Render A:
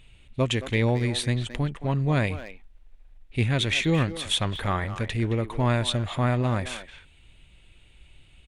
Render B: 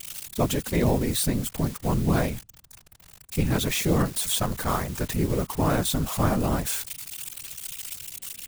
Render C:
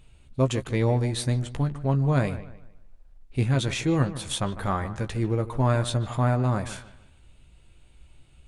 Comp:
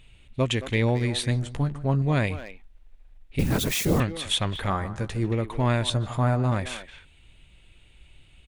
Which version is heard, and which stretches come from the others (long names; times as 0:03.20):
A
0:01.31–0:02.02: punch in from C
0:03.39–0:04.00: punch in from B
0:04.70–0:05.32: punch in from C
0:05.90–0:06.52: punch in from C